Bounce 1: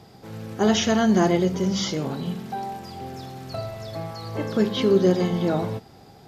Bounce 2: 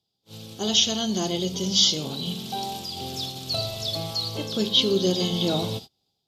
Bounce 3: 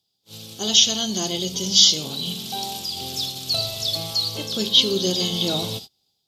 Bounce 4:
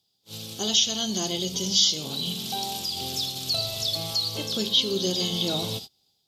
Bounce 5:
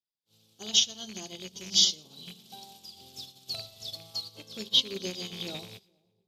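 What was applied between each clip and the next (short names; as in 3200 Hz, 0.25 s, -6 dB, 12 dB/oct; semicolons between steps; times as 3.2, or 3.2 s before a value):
gate -37 dBFS, range -30 dB; resonant high shelf 2500 Hz +11 dB, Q 3; AGC gain up to 6 dB; gain -5.5 dB
high shelf 2600 Hz +9.5 dB; gain -1.5 dB
compressor 1.5:1, threshold -33 dBFS, peak gain reduction 8.5 dB; gain +1.5 dB
rattling part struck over -32 dBFS, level -22 dBFS; split-band echo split 820 Hz, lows 0.424 s, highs 0.114 s, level -16 dB; upward expander 2.5:1, over -36 dBFS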